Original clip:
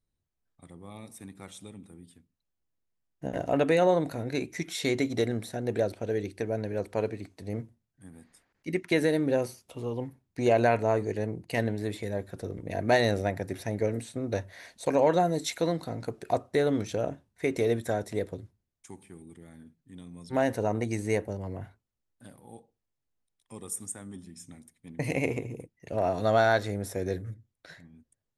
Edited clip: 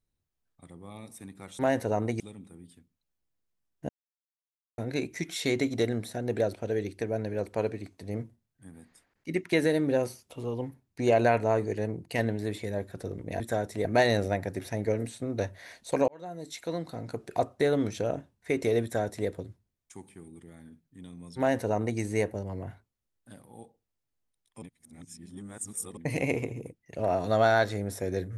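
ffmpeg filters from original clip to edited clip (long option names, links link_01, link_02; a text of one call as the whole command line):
ffmpeg -i in.wav -filter_complex "[0:a]asplit=10[link_01][link_02][link_03][link_04][link_05][link_06][link_07][link_08][link_09][link_10];[link_01]atrim=end=1.592[link_11];[link_02]atrim=start=20.318:end=20.932[link_12];[link_03]atrim=start=1.588:end=3.28,asetpts=PTS-STARTPTS,afade=type=out:start_time=1.688:duration=0.004:curve=hsin[link_13];[link_04]atrim=start=3.28:end=4.17,asetpts=PTS-STARTPTS,volume=0[link_14];[link_05]atrim=start=4.17:end=12.792,asetpts=PTS-STARTPTS,afade=type=in:duration=0.004:curve=hsin[link_15];[link_06]atrim=start=17.768:end=18.222[link_16];[link_07]atrim=start=12.788:end=15.02,asetpts=PTS-STARTPTS,afade=type=out:start_time=2.228:duration=0.004:curve=hsin[link_17];[link_08]atrim=start=15.02:end=23.562,asetpts=PTS-STARTPTS,afade=type=in:duration=1.23[link_18];[link_09]atrim=start=23.558:end=24.912,asetpts=PTS-STARTPTS,areverse[link_19];[link_10]atrim=start=24.908[link_20];[link_11][link_12]acrossfade=duration=0.004:curve1=hsin:curve2=hsin[link_21];[link_13][link_14][link_15]concat=n=3:v=0:a=1[link_22];[link_21][link_22]acrossfade=duration=0.004:curve1=hsin:curve2=hsin[link_23];[link_23][link_16]acrossfade=duration=0.004:curve1=hsin:curve2=hsin[link_24];[link_17][link_18]concat=n=2:v=0:a=1[link_25];[link_24][link_25]acrossfade=duration=0.004:curve1=hsin:curve2=hsin[link_26];[link_26][link_19]acrossfade=duration=0.004:curve1=hsin:curve2=hsin[link_27];[link_27][link_20]acrossfade=duration=0.004:curve1=hsin:curve2=hsin" out.wav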